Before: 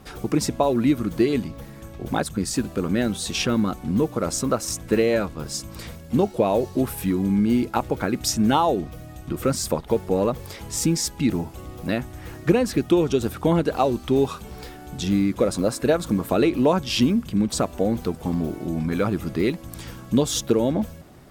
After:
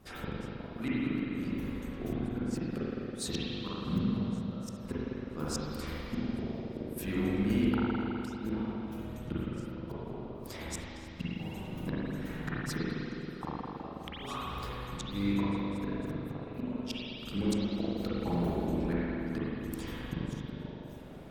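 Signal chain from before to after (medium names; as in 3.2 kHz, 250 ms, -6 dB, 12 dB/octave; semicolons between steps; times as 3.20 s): harmonic-percussive split harmonic -12 dB; inverted gate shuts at -18 dBFS, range -28 dB; spring tank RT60 3.2 s, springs 40/52 ms, chirp 60 ms, DRR -9 dB; trim -6.5 dB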